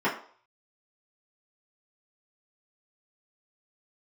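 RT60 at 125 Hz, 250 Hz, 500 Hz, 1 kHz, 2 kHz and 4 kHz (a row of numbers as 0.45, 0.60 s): 0.25, 0.40, 0.50, 0.50, 0.40, 0.45 s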